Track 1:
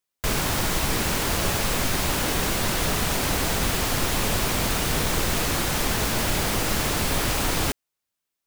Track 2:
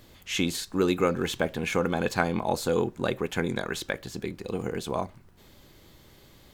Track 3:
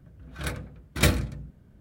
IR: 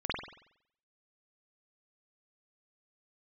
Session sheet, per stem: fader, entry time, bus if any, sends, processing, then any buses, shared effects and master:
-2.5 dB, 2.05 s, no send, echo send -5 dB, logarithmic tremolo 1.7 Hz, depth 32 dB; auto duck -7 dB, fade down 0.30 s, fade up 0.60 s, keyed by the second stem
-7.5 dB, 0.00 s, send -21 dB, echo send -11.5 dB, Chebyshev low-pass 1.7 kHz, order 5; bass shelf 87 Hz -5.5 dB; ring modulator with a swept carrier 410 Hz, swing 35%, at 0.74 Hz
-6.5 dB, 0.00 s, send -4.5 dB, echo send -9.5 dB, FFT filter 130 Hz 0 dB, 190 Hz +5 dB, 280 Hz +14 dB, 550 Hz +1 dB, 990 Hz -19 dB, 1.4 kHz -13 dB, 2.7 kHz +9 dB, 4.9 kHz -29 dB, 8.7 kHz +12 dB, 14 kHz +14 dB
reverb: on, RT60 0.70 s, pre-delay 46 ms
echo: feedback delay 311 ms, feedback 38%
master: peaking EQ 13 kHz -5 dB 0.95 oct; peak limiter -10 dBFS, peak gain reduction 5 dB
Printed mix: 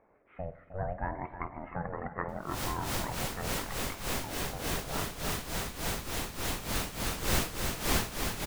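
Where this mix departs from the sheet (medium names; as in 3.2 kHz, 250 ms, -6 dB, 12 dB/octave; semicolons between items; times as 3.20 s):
stem 3: muted; master: missing peaking EQ 13 kHz -5 dB 0.95 oct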